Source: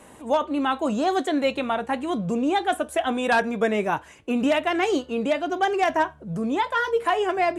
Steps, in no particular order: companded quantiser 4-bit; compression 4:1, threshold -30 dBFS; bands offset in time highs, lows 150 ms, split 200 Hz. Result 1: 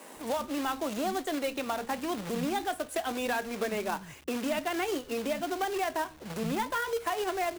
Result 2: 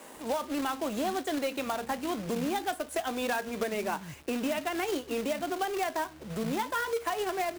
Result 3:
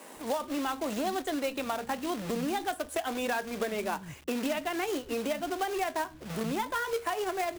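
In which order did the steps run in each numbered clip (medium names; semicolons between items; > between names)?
compression > companded quantiser > bands offset in time; bands offset in time > compression > companded quantiser; companded quantiser > bands offset in time > compression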